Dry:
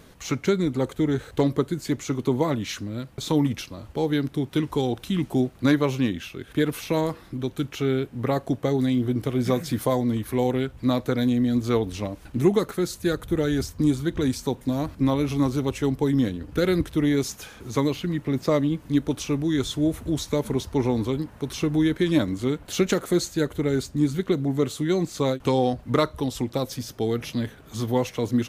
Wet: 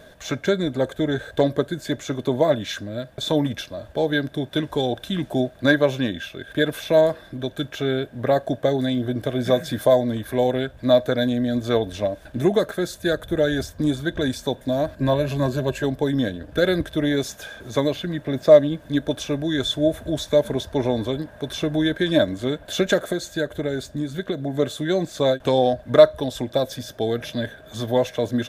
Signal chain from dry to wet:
0:14.96–0:15.84: EQ curve with evenly spaced ripples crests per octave 1.4, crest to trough 9 dB
0:22.99–0:24.54: downward compressor, threshold −22 dBFS, peak gain reduction 6.5 dB
hollow resonant body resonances 620/1,600/3,500 Hz, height 17 dB, ringing for 35 ms
level −1.5 dB

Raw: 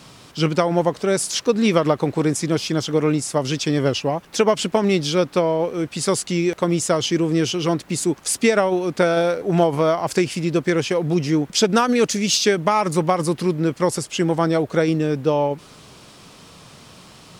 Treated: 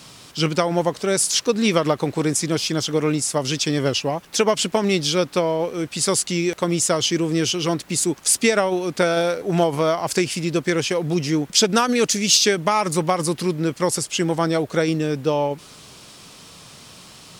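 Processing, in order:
high-shelf EQ 2,600 Hz +7.5 dB
level −2 dB

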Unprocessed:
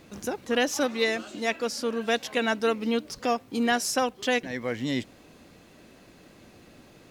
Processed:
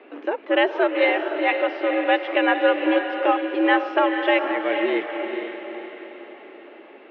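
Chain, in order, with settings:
single-sideband voice off tune +88 Hz 190–2,800 Hz
feedback delay with all-pass diffusion 470 ms, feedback 48%, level −6 dB
level +6 dB

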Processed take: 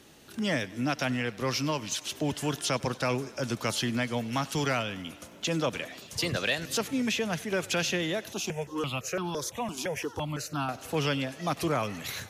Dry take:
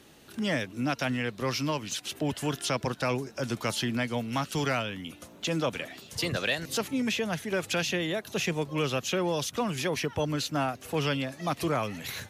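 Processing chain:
parametric band 6,200 Hz +2.5 dB
feedback echo with a high-pass in the loop 96 ms, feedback 78%, high-pass 230 Hz, level −21.5 dB
0:08.33–0:10.69: step-sequenced phaser 5.9 Hz 510–2,000 Hz

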